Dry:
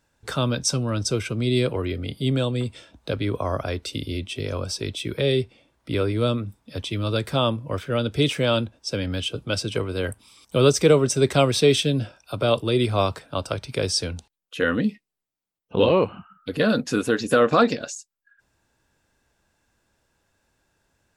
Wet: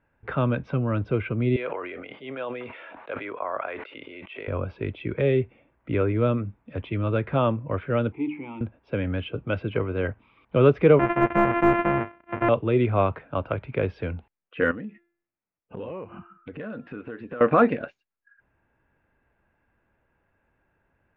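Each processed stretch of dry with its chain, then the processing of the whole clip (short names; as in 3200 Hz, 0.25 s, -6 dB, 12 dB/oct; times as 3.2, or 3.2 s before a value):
1.56–4.48 HPF 710 Hz + high shelf 5400 Hz -10 dB + sustainer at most 27 dB/s
8.12–8.61 zero-crossing step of -30 dBFS + vowel filter u + notches 50/100/150/200/250/300/350/400 Hz
10.99–12.49 sample sorter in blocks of 128 samples + bell 3900 Hz -4.5 dB 0.38 oct + overdrive pedal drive 10 dB, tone 2100 Hz, clips at -5.5 dBFS
14.71–17.41 de-hum 343.8 Hz, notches 29 + compressor 4:1, threshold -35 dBFS
whole clip: steep low-pass 2500 Hz 36 dB/oct; de-esser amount 85%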